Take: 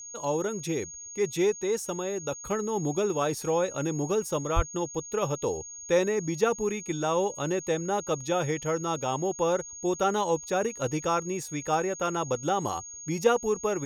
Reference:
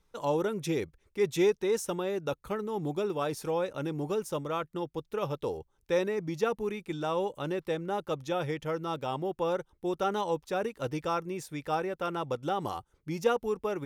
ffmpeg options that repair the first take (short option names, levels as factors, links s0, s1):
-filter_complex "[0:a]bandreject=f=6600:w=30,asplit=3[s0][s1][s2];[s0]afade=t=out:st=4.55:d=0.02[s3];[s1]highpass=f=140:w=0.5412,highpass=f=140:w=1.3066,afade=t=in:st=4.55:d=0.02,afade=t=out:st=4.67:d=0.02[s4];[s2]afade=t=in:st=4.67:d=0.02[s5];[s3][s4][s5]amix=inputs=3:normalize=0,asetnsamples=n=441:p=0,asendcmd='2.44 volume volume -4dB',volume=1"